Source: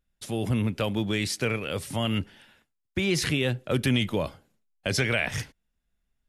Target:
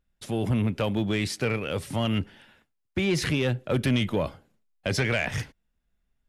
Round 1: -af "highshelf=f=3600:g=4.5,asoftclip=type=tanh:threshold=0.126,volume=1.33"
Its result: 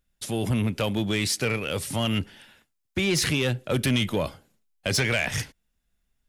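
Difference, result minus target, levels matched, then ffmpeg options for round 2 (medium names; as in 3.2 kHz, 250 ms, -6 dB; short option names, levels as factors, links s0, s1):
8 kHz band +7.0 dB
-af "highshelf=f=3600:g=-7,asoftclip=type=tanh:threshold=0.126,volume=1.33"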